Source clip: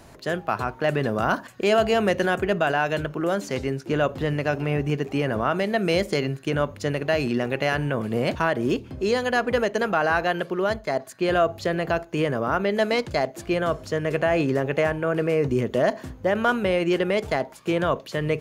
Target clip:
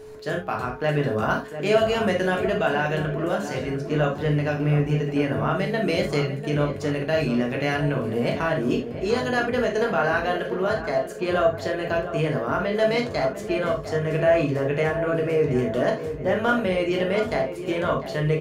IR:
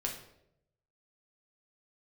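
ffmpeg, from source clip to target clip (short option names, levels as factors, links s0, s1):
-filter_complex "[0:a]asplit=2[s0][s1];[s1]adelay=699,lowpass=f=1700:p=1,volume=0.316,asplit=2[s2][s3];[s3]adelay=699,lowpass=f=1700:p=1,volume=0.54,asplit=2[s4][s5];[s5]adelay=699,lowpass=f=1700:p=1,volume=0.54,asplit=2[s6][s7];[s7]adelay=699,lowpass=f=1700:p=1,volume=0.54,asplit=2[s8][s9];[s9]adelay=699,lowpass=f=1700:p=1,volume=0.54,asplit=2[s10][s11];[s11]adelay=699,lowpass=f=1700:p=1,volume=0.54[s12];[s0][s2][s4][s6][s8][s10][s12]amix=inputs=7:normalize=0[s13];[1:a]atrim=start_sample=2205,atrim=end_sample=3969[s14];[s13][s14]afir=irnorm=-1:irlink=0,aeval=exprs='val(0)+0.0158*sin(2*PI*430*n/s)':c=same,volume=0.708"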